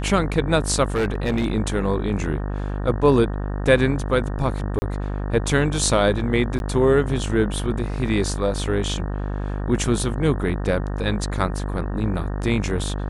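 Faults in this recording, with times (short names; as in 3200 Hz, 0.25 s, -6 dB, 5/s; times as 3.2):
buzz 50 Hz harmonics 37 -26 dBFS
0.95–1.46 clipped -17 dBFS
4.79–4.82 gap 30 ms
6.59–6.6 gap 11 ms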